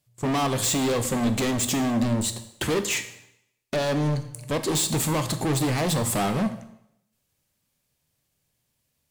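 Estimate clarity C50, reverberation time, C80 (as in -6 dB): 11.5 dB, 0.75 s, 14.0 dB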